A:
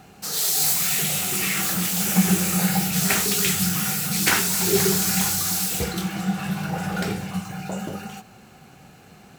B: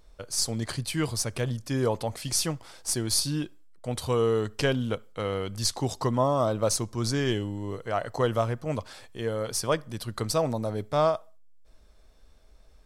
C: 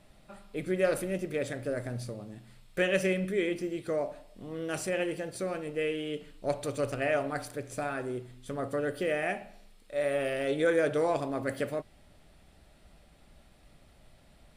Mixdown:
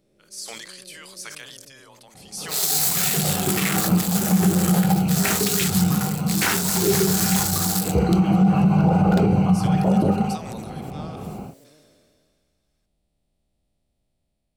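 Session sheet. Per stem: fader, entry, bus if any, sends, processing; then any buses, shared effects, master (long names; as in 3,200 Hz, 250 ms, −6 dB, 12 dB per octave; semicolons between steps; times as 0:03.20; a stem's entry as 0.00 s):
+1.0 dB, 2.15 s, no send, adaptive Wiener filter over 25 samples; automatic gain control gain up to 16 dB
−11.0 dB, 0.00 s, no send, high-pass filter 1,500 Hz 12 dB per octave; high-shelf EQ 4,500 Hz +4 dB; level that may fall only so fast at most 25 dB per second
−12.5 dB, 0.00 s, no send, spectrum smeared in time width 864 ms; parametric band 1,500 Hz −13.5 dB 1.6 octaves; mains-hum notches 60/120 Hz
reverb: not used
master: brickwall limiter −9.5 dBFS, peak gain reduction 9.5 dB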